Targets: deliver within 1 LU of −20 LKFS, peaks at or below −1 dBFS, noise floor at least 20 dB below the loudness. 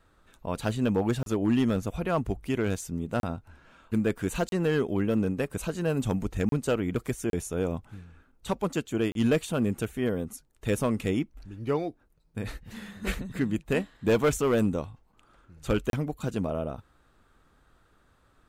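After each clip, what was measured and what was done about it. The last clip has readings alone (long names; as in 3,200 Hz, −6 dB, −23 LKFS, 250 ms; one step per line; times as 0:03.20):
share of clipped samples 0.5%; peaks flattened at −17.0 dBFS; number of dropouts 7; longest dropout 32 ms; integrated loudness −29.0 LKFS; sample peak −17.0 dBFS; target loudness −20.0 LKFS
→ clipped peaks rebuilt −17 dBFS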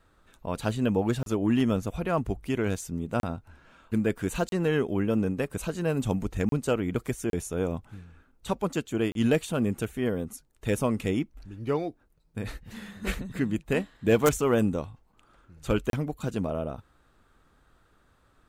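share of clipped samples 0.0%; number of dropouts 7; longest dropout 32 ms
→ repair the gap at 0:01.23/0:03.20/0:04.49/0:06.49/0:07.30/0:09.12/0:15.90, 32 ms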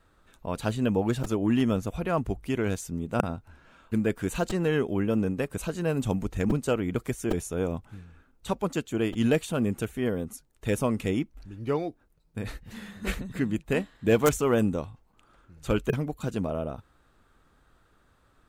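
number of dropouts 0; integrated loudness −29.0 LKFS; sample peak −5.5 dBFS; target loudness −20.0 LKFS
→ level +9 dB
brickwall limiter −1 dBFS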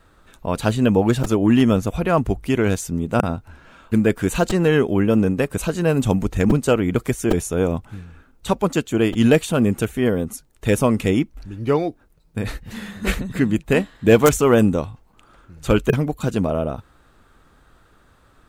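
integrated loudness −20.0 LKFS; sample peak −1.0 dBFS; background noise floor −55 dBFS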